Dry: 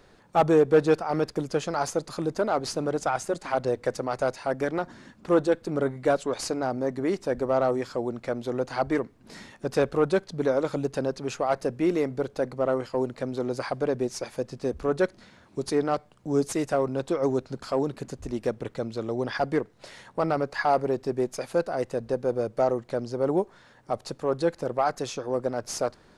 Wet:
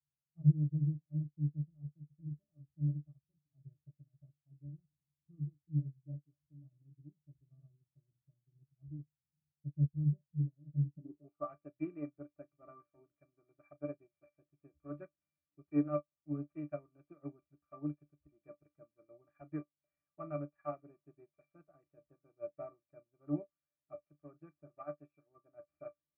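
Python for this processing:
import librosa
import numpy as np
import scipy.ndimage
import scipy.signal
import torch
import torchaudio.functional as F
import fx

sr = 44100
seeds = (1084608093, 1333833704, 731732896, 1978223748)

y = scipy.signal.sosfilt(scipy.signal.butter(2, 60.0, 'highpass', fs=sr, output='sos'), x)
y = fx.octave_resonator(y, sr, note='D', decay_s=0.15)
y = fx.filter_sweep_lowpass(y, sr, from_hz=130.0, to_hz=2000.0, start_s=10.91, end_s=11.51, q=3.8)
y = fx.doubler(y, sr, ms=34.0, db=-12)
y = fx.upward_expand(y, sr, threshold_db=-49.0, expansion=2.5)
y = y * librosa.db_to_amplitude(4.0)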